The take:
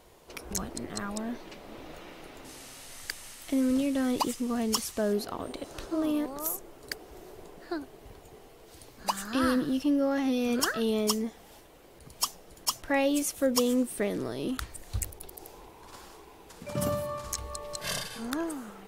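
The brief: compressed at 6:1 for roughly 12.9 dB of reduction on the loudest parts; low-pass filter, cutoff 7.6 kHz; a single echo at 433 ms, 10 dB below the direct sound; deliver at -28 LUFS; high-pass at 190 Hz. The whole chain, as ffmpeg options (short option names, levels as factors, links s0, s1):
-af "highpass=190,lowpass=7600,acompressor=threshold=0.0141:ratio=6,aecho=1:1:433:0.316,volume=4.73"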